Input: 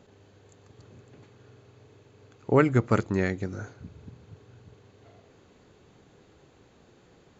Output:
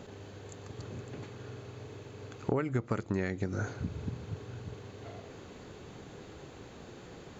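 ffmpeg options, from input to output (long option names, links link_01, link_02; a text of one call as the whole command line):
ffmpeg -i in.wav -af "alimiter=limit=-13.5dB:level=0:latency=1:release=391,acompressor=threshold=-37dB:ratio=8,volume=9dB" out.wav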